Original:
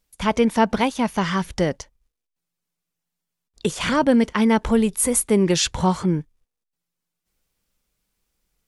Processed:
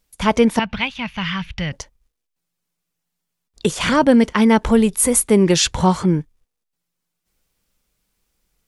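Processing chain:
0:00.59–0:01.73: drawn EQ curve 140 Hz 0 dB, 370 Hz −20 dB, 1,800 Hz −3 dB, 2,600 Hz +6 dB, 8,900 Hz −23 dB
level +4 dB

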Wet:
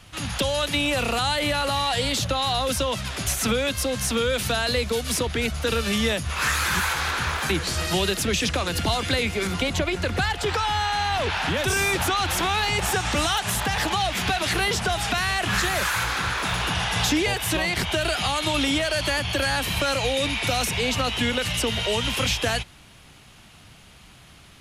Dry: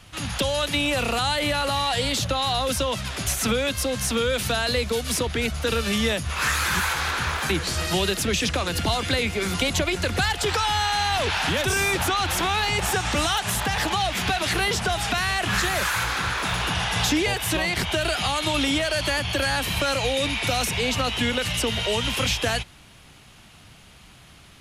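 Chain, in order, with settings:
0:09.47–0:11.62: high-shelf EQ 4,100 Hz −7.5 dB

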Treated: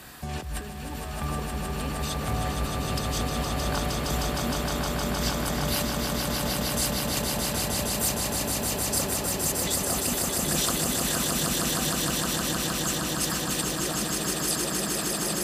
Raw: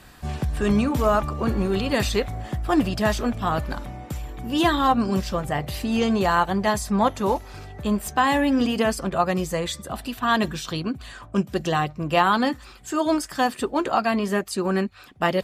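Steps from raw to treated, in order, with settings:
high-pass filter 100 Hz 6 dB per octave
compressor whose output falls as the input rises −33 dBFS, ratio −1
high-shelf EQ 8,400 Hz +9 dB
on a send: echo that builds up and dies away 155 ms, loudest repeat 8, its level −4 dB
on the sum: level −4.5 dB

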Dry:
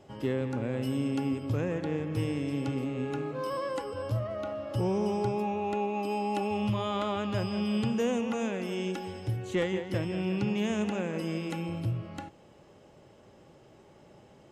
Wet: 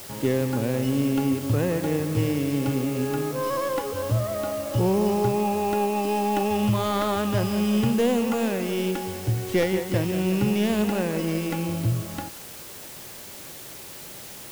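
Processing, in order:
stylus tracing distortion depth 0.12 ms
high-shelf EQ 3,300 Hz −4.5 dB
bit-depth reduction 8 bits, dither triangular
level +7 dB

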